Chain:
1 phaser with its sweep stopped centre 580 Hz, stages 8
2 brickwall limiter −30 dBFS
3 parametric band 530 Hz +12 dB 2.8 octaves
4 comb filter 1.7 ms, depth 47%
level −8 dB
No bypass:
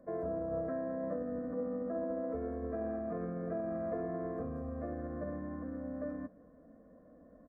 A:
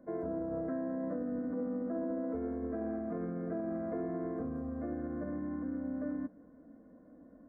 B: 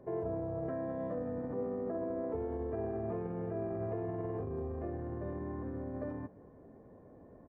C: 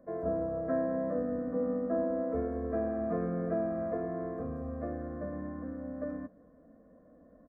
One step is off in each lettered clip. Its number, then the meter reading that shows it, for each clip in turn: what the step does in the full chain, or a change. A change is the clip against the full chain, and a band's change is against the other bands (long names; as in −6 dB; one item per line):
4, 250 Hz band +5.5 dB
1, 125 Hz band +5.0 dB
2, average gain reduction 3.0 dB